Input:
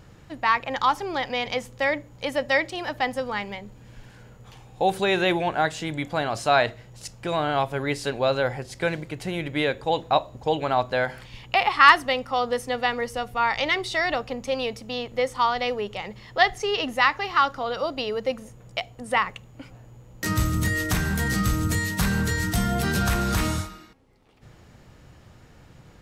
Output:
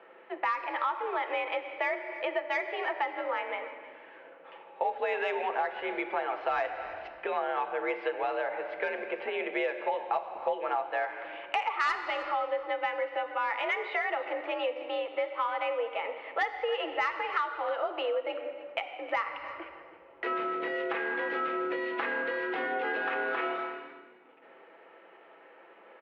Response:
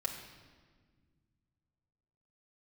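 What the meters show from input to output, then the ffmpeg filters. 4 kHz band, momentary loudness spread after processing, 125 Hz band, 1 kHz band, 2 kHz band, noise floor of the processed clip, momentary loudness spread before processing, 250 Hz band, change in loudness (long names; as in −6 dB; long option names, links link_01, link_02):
−13.0 dB, 8 LU, below −35 dB, −7.0 dB, −7.0 dB, −55 dBFS, 9 LU, −12.5 dB, −7.5 dB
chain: -filter_complex "[0:a]highpass=frequency=330:width_type=q:width=0.5412,highpass=frequency=330:width_type=q:width=1.307,lowpass=frequency=2700:width_type=q:width=0.5176,lowpass=frequency=2700:width_type=q:width=0.7071,lowpass=frequency=2700:width_type=q:width=1.932,afreqshift=56,asoftclip=type=tanh:threshold=-9.5dB,asplit=2[link_01][link_02];[1:a]atrim=start_sample=2205,asetrate=43659,aresample=44100[link_03];[link_02][link_03]afir=irnorm=-1:irlink=0,volume=-1dB[link_04];[link_01][link_04]amix=inputs=2:normalize=0,acompressor=threshold=-26dB:ratio=4,aecho=1:1:314:0.15,volume=-3dB"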